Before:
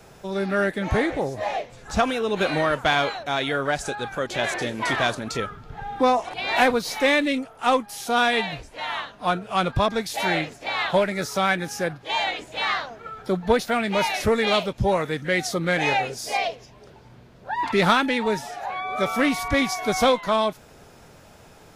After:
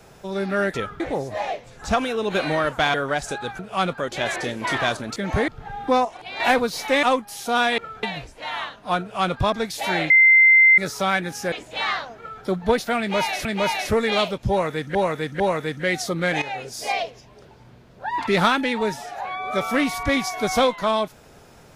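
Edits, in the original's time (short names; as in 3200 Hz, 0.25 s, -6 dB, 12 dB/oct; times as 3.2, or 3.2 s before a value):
0.74–1.06 swap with 5.34–5.6
3–3.51 cut
6.17–6.52 gain -6 dB
7.15–7.64 cut
9.37–9.76 copy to 4.16
10.46–11.14 bleep 2080 Hz -9.5 dBFS
11.88–12.33 cut
13–13.25 copy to 8.39
13.8–14.26 loop, 2 plays
14.85–15.3 loop, 3 plays
15.87–16.24 fade in, from -15 dB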